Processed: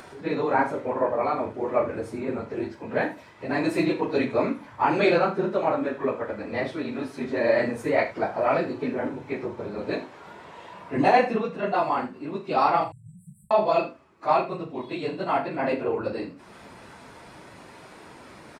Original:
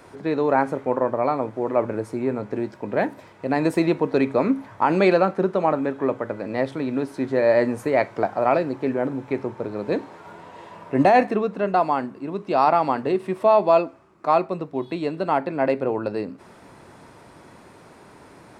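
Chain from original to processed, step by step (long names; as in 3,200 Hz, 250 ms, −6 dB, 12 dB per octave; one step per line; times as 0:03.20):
random phases in long frames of 50 ms
parametric band 3,100 Hz +5.5 dB 2.5 octaves
upward compression, threshold −35 dBFS
0:12.84–0:13.51: linear-phase brick-wall band-stop 180–7,500 Hz
on a send: ambience of single reflections 39 ms −9.5 dB, 78 ms −14 dB
on the sum: level −5 dB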